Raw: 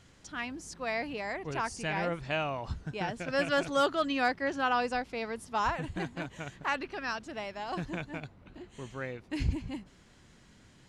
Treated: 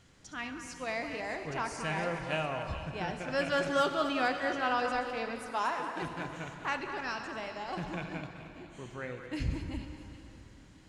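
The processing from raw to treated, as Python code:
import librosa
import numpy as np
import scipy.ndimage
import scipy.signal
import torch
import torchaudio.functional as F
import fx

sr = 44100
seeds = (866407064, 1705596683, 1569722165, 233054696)

y = fx.reverse_delay(x, sr, ms=146, wet_db=-10)
y = fx.highpass(y, sr, hz=250.0, slope=24, at=(5.51, 6.02))
y = fx.echo_stepped(y, sr, ms=212, hz=1300.0, octaves=1.4, feedback_pct=70, wet_db=-7.5)
y = fx.rev_plate(y, sr, seeds[0], rt60_s=3.8, hf_ratio=0.75, predelay_ms=0, drr_db=7.0)
y = y * librosa.db_to_amplitude(-2.5)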